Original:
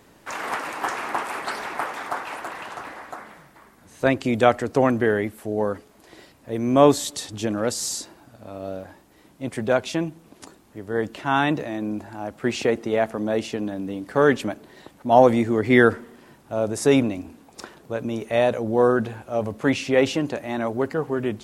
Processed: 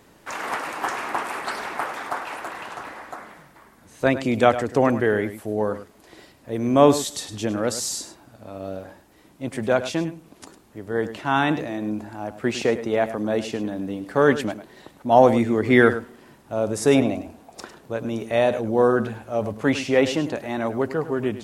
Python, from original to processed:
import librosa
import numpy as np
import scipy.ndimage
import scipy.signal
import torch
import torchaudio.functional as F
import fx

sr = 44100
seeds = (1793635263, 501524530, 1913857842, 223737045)

y = fx.peak_eq(x, sr, hz=680.0, db=10.5, octaves=0.47, at=(16.95, 17.62))
y = y + 10.0 ** (-13.0 / 20.0) * np.pad(y, (int(103 * sr / 1000.0), 0))[:len(y)]